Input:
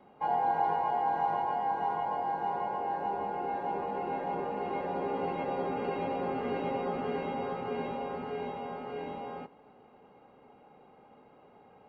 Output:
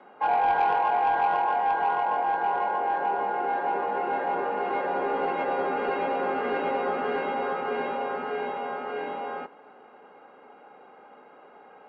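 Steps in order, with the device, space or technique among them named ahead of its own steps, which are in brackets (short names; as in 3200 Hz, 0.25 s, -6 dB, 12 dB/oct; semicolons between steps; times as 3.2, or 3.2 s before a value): intercom (BPF 330–4000 Hz; bell 1500 Hz +8 dB 0.55 oct; soft clip -23 dBFS, distortion -20 dB); gain +7 dB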